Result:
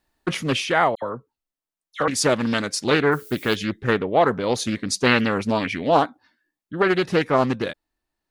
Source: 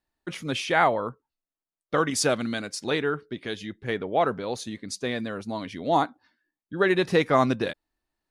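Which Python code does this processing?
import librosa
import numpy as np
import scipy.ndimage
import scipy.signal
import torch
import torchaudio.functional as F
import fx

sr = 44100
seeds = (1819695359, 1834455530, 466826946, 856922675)

y = fx.dmg_noise_colour(x, sr, seeds[0], colour='violet', level_db=-53.0, at=(3.11, 3.54), fade=0.02)
y = fx.rider(y, sr, range_db=5, speed_s=0.5)
y = fx.dispersion(y, sr, late='lows', ms=74.0, hz=2000.0, at=(0.95, 2.08))
y = fx.peak_eq(y, sr, hz=2300.0, db=11.0, octaves=0.35, at=(5.06, 5.91))
y = fx.doppler_dist(y, sr, depth_ms=0.34)
y = F.gain(torch.from_numpy(y), 5.5).numpy()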